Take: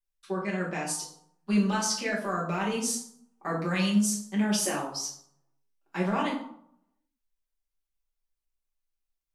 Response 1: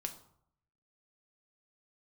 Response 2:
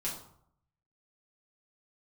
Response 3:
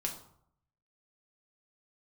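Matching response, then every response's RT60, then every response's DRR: 2; 0.65 s, 0.65 s, 0.65 s; 5.0 dB, -6.5 dB, 0.5 dB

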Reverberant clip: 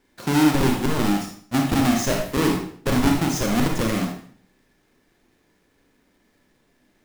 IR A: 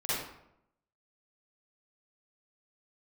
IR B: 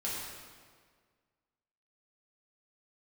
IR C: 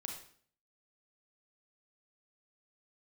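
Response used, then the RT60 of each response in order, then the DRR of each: C; 0.75 s, 1.7 s, 0.55 s; -12.0 dB, -7.0 dB, 1.5 dB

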